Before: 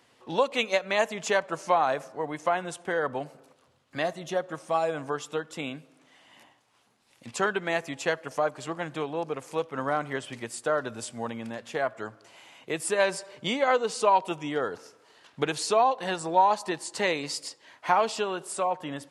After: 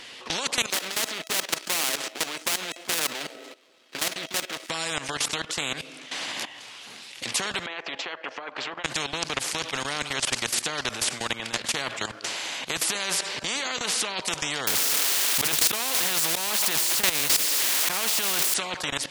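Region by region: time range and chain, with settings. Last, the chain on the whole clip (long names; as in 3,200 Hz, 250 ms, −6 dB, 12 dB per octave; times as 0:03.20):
0:00.70–0:04.70: gap after every zero crossing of 0.25 ms + high-pass with resonance 320 Hz, resonance Q 2.3 + tuned comb filter 650 Hz, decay 0.17 s, mix 70%
0:07.66–0:08.84: high-pass filter 570 Hz + downward compressor 3 to 1, threshold −36 dBFS + head-to-tape spacing loss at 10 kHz 43 dB
0:14.67–0:18.54: spike at every zero crossing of −27 dBFS + volume swells 105 ms + envelope flattener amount 50%
whole clip: meter weighting curve D; output level in coarse steps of 17 dB; every bin compressed towards the loudest bin 4 to 1; level +2.5 dB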